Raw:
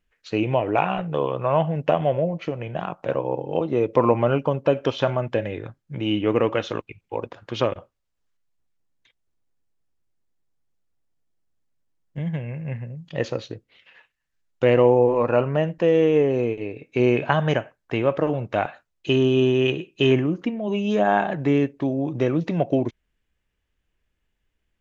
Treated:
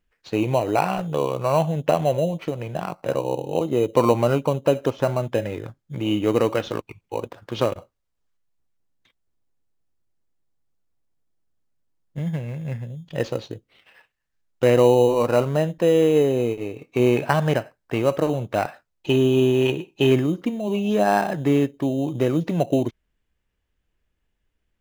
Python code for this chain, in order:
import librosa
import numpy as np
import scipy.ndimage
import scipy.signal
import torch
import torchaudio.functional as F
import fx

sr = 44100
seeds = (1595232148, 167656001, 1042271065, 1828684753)

p1 = fx.peak_eq(x, sr, hz=3700.0, db=-14.5, octaves=1.0, at=(4.86, 5.27))
p2 = fx.sample_hold(p1, sr, seeds[0], rate_hz=3400.0, jitter_pct=0)
p3 = p1 + F.gain(torch.from_numpy(p2), -10.0).numpy()
y = F.gain(torch.from_numpy(p3), -1.5).numpy()